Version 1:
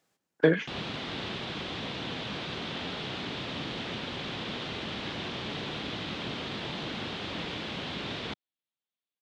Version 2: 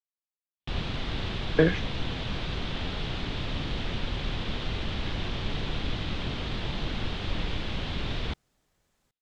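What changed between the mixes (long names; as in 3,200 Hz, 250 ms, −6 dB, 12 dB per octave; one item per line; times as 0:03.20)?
speech: entry +1.15 s
master: remove high-pass filter 180 Hz 12 dB per octave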